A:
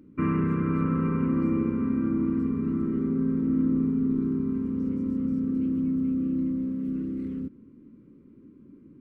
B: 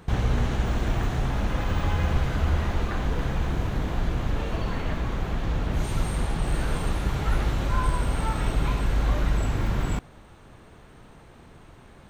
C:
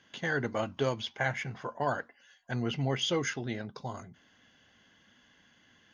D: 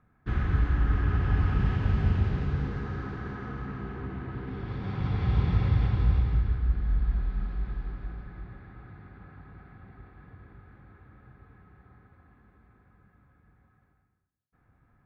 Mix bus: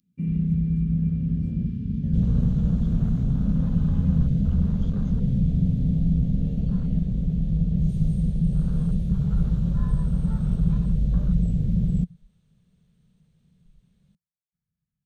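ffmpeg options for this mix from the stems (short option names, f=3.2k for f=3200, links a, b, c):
-filter_complex "[0:a]aexciter=amount=7.4:drive=7.6:freq=2.1k,volume=-7.5dB[a];[1:a]adelay=2050,volume=0.5dB[b];[2:a]aeval=exprs='val(0)*sin(2*PI*50*n/s)':c=same,adelay=1800,volume=-6.5dB[c];[3:a]highshelf=f=2.1k:g=11.5,volume=-7dB[d];[a][b][c][d]amix=inputs=4:normalize=0,afwtdn=0.0355,firequalizer=gain_entry='entry(110,0);entry(170,14);entry(300,-15);entry(460,-8);entry(800,-19);entry(3400,-1)':delay=0.05:min_phase=1"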